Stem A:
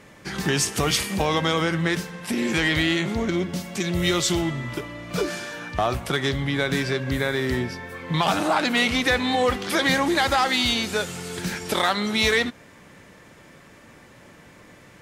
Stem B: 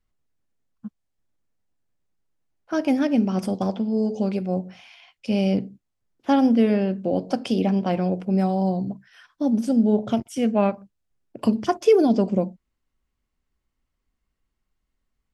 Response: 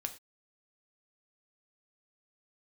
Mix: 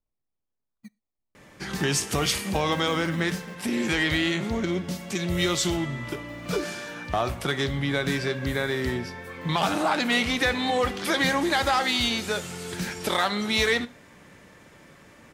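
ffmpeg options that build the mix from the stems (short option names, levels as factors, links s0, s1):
-filter_complex "[0:a]adelay=1350,volume=0.473,asplit=2[s0][s1];[s1]volume=0.668[s2];[1:a]acompressor=threshold=0.0398:ratio=6,acrusher=samples=23:mix=1:aa=0.000001:lfo=1:lforange=13.8:lforate=1.1,volume=0.282,afade=t=out:st=3.19:d=0.61:silence=0.223872,asplit=2[s3][s4];[s4]volume=0.211[s5];[2:a]atrim=start_sample=2205[s6];[s2][s5]amix=inputs=2:normalize=0[s7];[s7][s6]afir=irnorm=-1:irlink=0[s8];[s0][s3][s8]amix=inputs=3:normalize=0"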